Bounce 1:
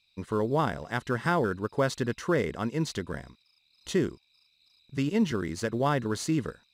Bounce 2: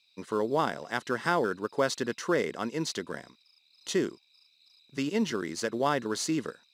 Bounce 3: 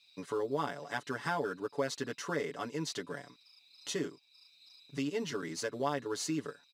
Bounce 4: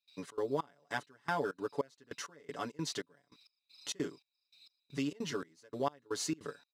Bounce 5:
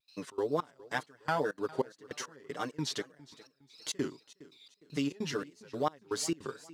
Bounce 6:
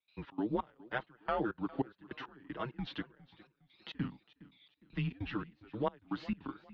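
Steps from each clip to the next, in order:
high-pass filter 240 Hz 12 dB per octave; parametric band 5,400 Hz +4.5 dB 1.1 octaves
comb filter 7 ms, depth 97%; downward compressor 1.5 to 1, threshold −48 dBFS, peak gain reduction 11.5 dB
gate pattern ".xxx.xxx....xx.." 199 BPM −24 dB
tape wow and flutter 130 cents; feedback echo with a swinging delay time 409 ms, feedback 36%, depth 109 cents, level −20 dB; level +3 dB
single-sideband voice off tune −120 Hz 200–3,500 Hz; level −2.5 dB

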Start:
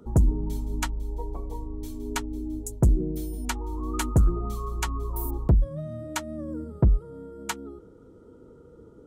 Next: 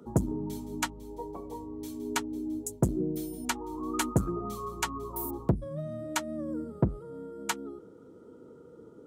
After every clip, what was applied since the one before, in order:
high-pass filter 150 Hz 12 dB per octave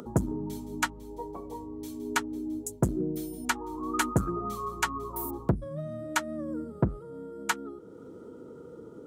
dynamic equaliser 1,500 Hz, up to +7 dB, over −50 dBFS, Q 1.5
upward compression, threshold −38 dBFS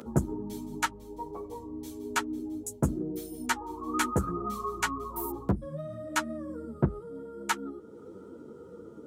string-ensemble chorus
level +2.5 dB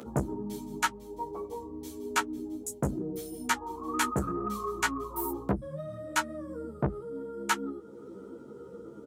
high-pass filter 71 Hz 6 dB per octave
double-tracking delay 15 ms −5 dB
saturating transformer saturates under 510 Hz

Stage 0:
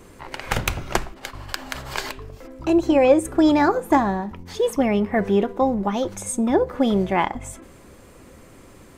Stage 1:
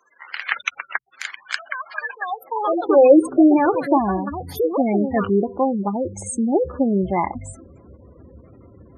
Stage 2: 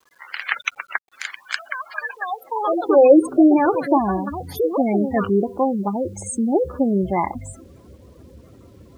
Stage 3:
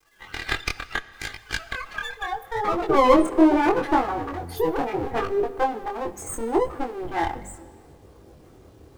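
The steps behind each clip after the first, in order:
delay with pitch and tempo change per echo 125 ms, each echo +6 semitones, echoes 2, each echo −6 dB; gate on every frequency bin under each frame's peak −15 dB strong; high-pass filter sweep 1,700 Hz → 73 Hz, 0:02.16–0:04.03
bit reduction 10 bits
lower of the sound and its delayed copy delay 2.5 ms; chorus effect 0.74 Hz, delay 19.5 ms, depth 5.8 ms; dense smooth reverb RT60 1.7 s, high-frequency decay 0.85×, DRR 15.5 dB; level +1.5 dB

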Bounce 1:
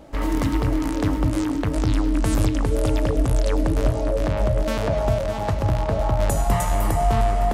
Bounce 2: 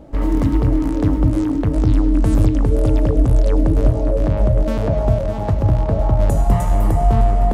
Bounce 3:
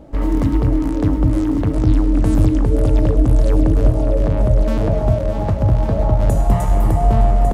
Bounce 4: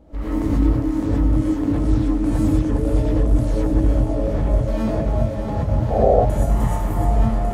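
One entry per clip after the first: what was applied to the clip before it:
tilt shelving filter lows +6.5 dB, about 810 Hz
single-tap delay 1,150 ms −8.5 dB
sound drawn into the spectrogram noise, 0:05.90–0:06.13, 390–790 Hz −12 dBFS; reverb whose tail is shaped and stops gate 150 ms rising, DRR −8 dB; level −11 dB

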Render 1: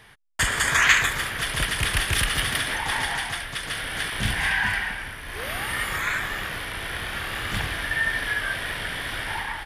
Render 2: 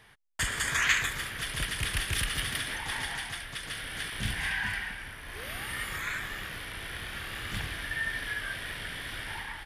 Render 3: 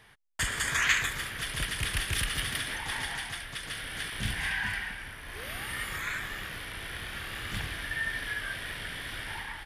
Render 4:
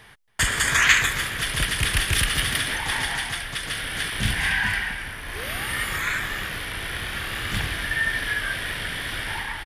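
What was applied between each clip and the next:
dynamic equaliser 800 Hz, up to −5 dB, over −39 dBFS, Q 0.78; level −6.5 dB
no processing that can be heard
single-tap delay 277 ms −19 dB; level +8.5 dB

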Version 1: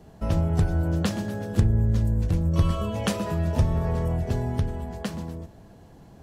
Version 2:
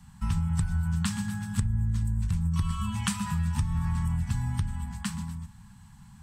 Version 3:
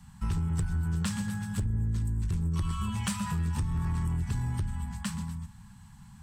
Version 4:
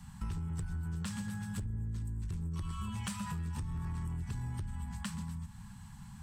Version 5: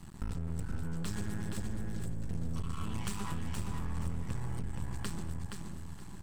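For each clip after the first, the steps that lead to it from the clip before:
inverse Chebyshev band-stop filter 310–640 Hz, stop band 40 dB; parametric band 8,200 Hz +13.5 dB 0.24 octaves; downward compressor, threshold −23 dBFS, peak gain reduction 9.5 dB
soft clipping −22.5 dBFS, distortion −16 dB
downward compressor 3 to 1, threshold −40 dBFS, peak gain reduction 10.5 dB; level +1.5 dB
half-wave rectification; repeating echo 472 ms, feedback 24%, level −5 dB; level +4 dB

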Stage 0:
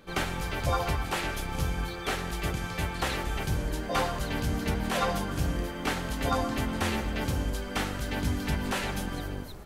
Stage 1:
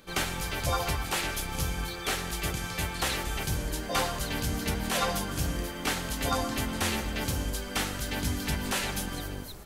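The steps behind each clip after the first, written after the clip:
high-shelf EQ 3,300 Hz +10 dB
level −2 dB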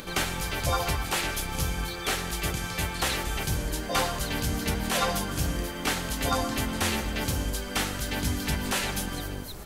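upward compression, threshold −34 dBFS
level +2 dB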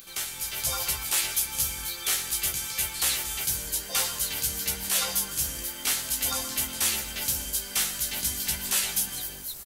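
automatic gain control gain up to 6.5 dB
first-order pre-emphasis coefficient 0.9
double-tracking delay 15 ms −5 dB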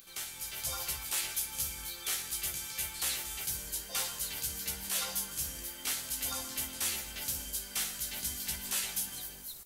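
flutter between parallel walls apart 9.8 metres, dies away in 0.26 s
level −8 dB

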